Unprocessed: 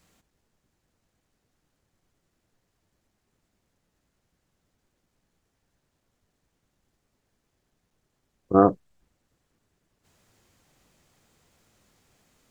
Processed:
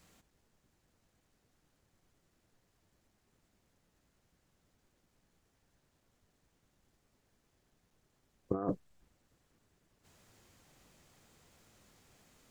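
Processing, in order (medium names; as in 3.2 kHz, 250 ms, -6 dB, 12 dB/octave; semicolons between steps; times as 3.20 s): compressor with a negative ratio -26 dBFS, ratio -1; trim -8 dB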